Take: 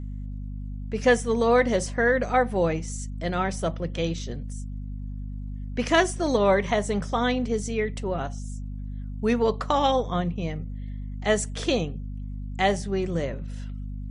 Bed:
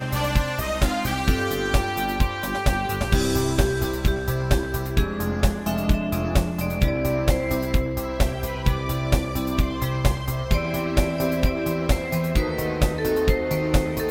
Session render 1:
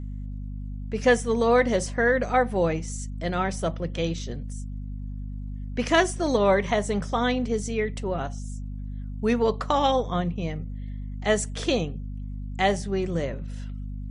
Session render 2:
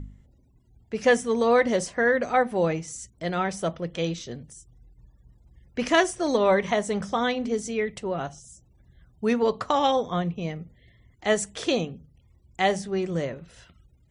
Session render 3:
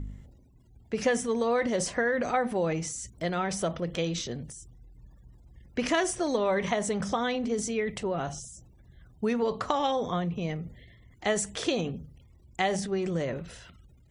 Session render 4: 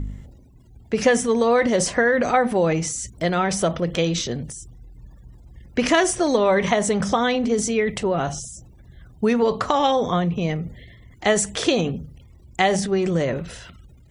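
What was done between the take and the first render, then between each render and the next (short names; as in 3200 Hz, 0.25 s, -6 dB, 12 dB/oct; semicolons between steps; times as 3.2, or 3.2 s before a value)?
nothing audible
de-hum 50 Hz, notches 5
compressor 2:1, threshold -29 dBFS, peak gain reduction 8.5 dB; transient shaper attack +2 dB, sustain +7 dB
gain +8.5 dB; limiter -3 dBFS, peak gain reduction 2 dB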